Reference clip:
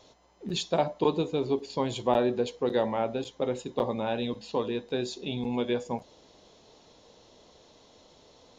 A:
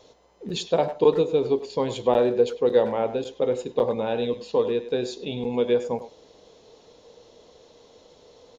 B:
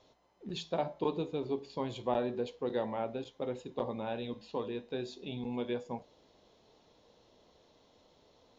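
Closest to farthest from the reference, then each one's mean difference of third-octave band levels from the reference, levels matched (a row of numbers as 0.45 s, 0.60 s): B, A; 1.0 dB, 3.0 dB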